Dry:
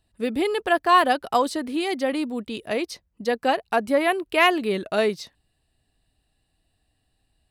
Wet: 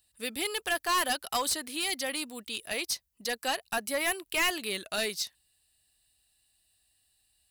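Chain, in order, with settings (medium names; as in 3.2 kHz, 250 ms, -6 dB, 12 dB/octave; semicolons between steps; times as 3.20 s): pre-emphasis filter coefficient 0.97; hard clipper -32.5 dBFS, distortion -7 dB; peaking EQ 61 Hz +9.5 dB 2.8 oct; trim +9 dB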